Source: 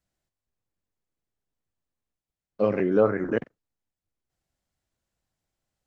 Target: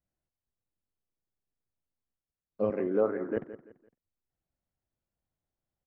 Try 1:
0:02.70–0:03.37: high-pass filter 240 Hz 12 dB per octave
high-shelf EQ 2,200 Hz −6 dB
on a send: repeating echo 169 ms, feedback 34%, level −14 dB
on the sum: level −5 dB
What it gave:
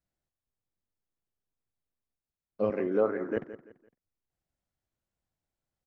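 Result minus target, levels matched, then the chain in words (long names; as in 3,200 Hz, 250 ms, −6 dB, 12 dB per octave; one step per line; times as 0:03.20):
4,000 Hz band +5.5 dB
0:02.70–0:03.37: high-pass filter 240 Hz 12 dB per octave
high-shelf EQ 2,200 Hz −15.5 dB
on a send: repeating echo 169 ms, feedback 34%, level −14 dB
on the sum: level −5 dB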